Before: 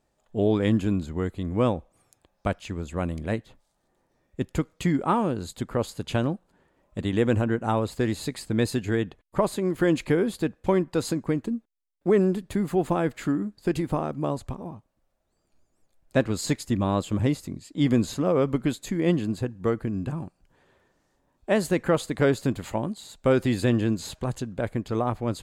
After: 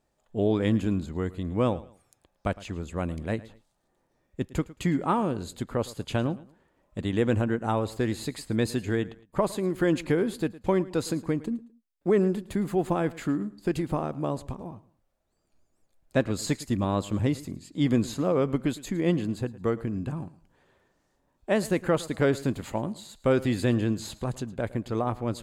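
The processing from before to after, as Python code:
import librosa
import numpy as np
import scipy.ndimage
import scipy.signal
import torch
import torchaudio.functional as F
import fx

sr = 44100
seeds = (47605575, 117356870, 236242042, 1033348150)

y = fx.echo_feedback(x, sr, ms=110, feedback_pct=29, wet_db=-19)
y = F.gain(torch.from_numpy(y), -2.0).numpy()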